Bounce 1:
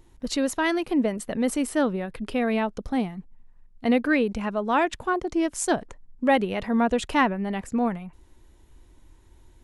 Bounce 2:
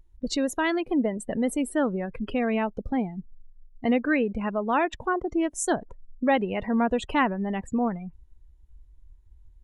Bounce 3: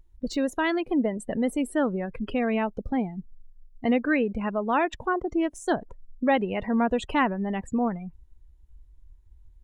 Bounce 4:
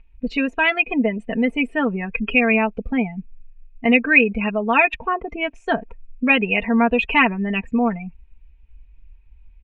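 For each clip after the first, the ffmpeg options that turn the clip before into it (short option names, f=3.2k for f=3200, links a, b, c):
-filter_complex "[0:a]asplit=2[a][b];[b]acompressor=threshold=-32dB:ratio=10,volume=1dB[c];[a][c]amix=inputs=2:normalize=0,afftdn=nr=23:nf=-33,volume=-3.5dB"
-af "deesser=0.75"
-af "lowpass=f=2.5k:t=q:w=13,aecho=1:1:4.4:0.79,volume=1.5dB"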